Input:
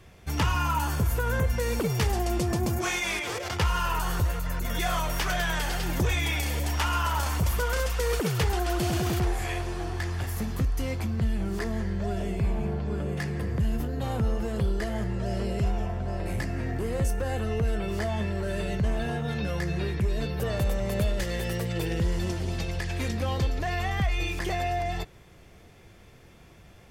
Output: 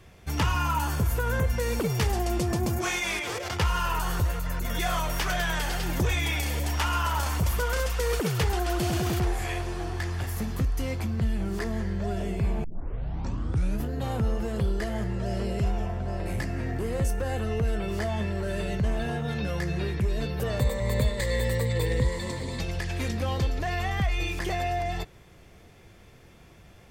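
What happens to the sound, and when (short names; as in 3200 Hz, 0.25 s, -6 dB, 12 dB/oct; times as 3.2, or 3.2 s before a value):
12.64 tape start 1.21 s
20.6–22.6 ripple EQ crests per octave 1, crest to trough 13 dB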